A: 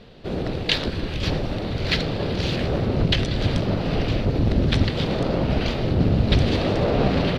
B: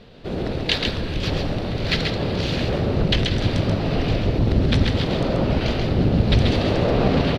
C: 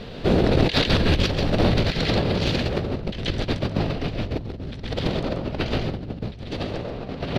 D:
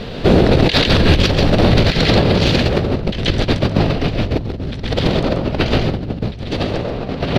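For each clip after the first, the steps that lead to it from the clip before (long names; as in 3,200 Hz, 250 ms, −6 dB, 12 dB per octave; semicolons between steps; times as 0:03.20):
single-tap delay 134 ms −4.5 dB
compressor whose output falls as the input rises −26 dBFS, ratio −0.5; level +3.5 dB
boost into a limiter +10 dB; level −1 dB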